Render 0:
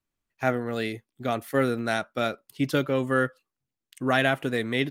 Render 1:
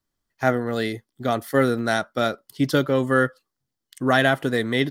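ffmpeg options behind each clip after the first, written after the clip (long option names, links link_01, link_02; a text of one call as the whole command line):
ffmpeg -i in.wav -af "superequalizer=12b=0.447:14b=1.41,volume=4.5dB" out.wav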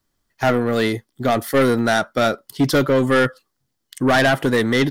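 ffmpeg -i in.wav -af "asoftclip=type=tanh:threshold=-18.5dB,volume=8dB" out.wav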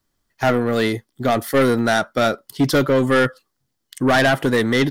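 ffmpeg -i in.wav -af anull out.wav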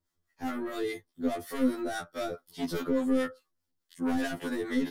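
ffmpeg -i in.wav -filter_complex "[0:a]acrossover=split=380|6600[link_01][link_02][link_03];[link_02]alimiter=limit=-17.5dB:level=0:latency=1:release=46[link_04];[link_01][link_04][link_03]amix=inputs=3:normalize=0,acrossover=split=640[link_05][link_06];[link_05]aeval=exprs='val(0)*(1-0.7/2+0.7/2*cos(2*PI*4.8*n/s))':channel_layout=same[link_07];[link_06]aeval=exprs='val(0)*(1-0.7/2-0.7/2*cos(2*PI*4.8*n/s))':channel_layout=same[link_08];[link_07][link_08]amix=inputs=2:normalize=0,afftfilt=real='re*2*eq(mod(b,4),0)':imag='im*2*eq(mod(b,4),0)':win_size=2048:overlap=0.75,volume=-5dB" out.wav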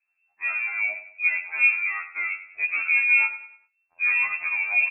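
ffmpeg -i in.wav -af "lowpass=frequency=2300:width_type=q:width=0.5098,lowpass=frequency=2300:width_type=q:width=0.6013,lowpass=frequency=2300:width_type=q:width=0.9,lowpass=frequency=2300:width_type=q:width=2.563,afreqshift=-2700,crystalizer=i=8.5:c=0,aecho=1:1:98|196|294|392:0.224|0.0895|0.0358|0.0143,volume=-3.5dB" out.wav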